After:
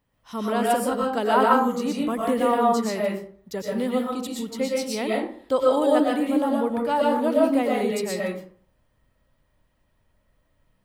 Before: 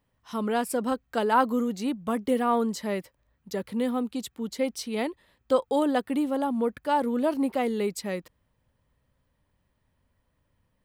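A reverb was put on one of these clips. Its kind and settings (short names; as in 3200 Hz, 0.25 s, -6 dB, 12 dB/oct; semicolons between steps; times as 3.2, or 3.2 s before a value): digital reverb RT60 0.5 s, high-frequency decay 0.55×, pre-delay 80 ms, DRR -3.5 dB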